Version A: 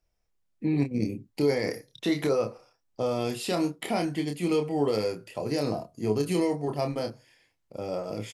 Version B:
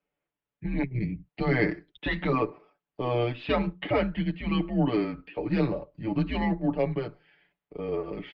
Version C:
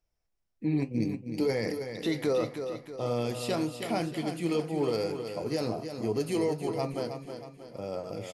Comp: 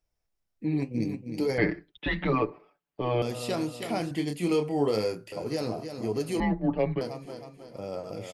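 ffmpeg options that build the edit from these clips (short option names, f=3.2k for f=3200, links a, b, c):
-filter_complex "[1:a]asplit=2[a][b];[2:a]asplit=4[c][d][e][f];[c]atrim=end=1.582[g];[a]atrim=start=1.578:end=3.222[h];[d]atrim=start=3.218:end=4.112[i];[0:a]atrim=start=4.108:end=5.322[j];[e]atrim=start=5.318:end=6.402[k];[b]atrim=start=6.398:end=7.012[l];[f]atrim=start=7.008[m];[g][h]acrossfade=d=0.004:c1=hsin:c2=hsin[n];[n][i]acrossfade=d=0.004:c1=hsin:c2=hsin[o];[o][j]acrossfade=d=0.004:c1=hsin:c2=hsin[p];[p][k]acrossfade=d=0.004:c1=hsin:c2=hsin[q];[q][l]acrossfade=d=0.004:c1=hsin:c2=hsin[r];[r][m]acrossfade=d=0.004:c1=hsin:c2=hsin"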